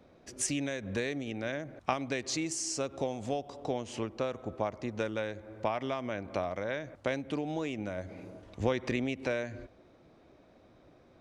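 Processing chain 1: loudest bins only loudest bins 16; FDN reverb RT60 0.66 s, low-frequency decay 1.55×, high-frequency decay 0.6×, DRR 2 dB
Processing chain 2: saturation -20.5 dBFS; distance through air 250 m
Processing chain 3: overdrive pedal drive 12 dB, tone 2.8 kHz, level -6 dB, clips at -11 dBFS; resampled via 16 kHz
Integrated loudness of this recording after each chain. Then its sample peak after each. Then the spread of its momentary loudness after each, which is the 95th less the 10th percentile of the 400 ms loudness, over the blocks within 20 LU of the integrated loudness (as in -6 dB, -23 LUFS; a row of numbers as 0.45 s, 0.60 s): -33.0 LUFS, -37.0 LUFS, -32.5 LUFS; -16.0 dBFS, -21.5 dBFS, -11.5 dBFS; 7 LU, 6 LU, 6 LU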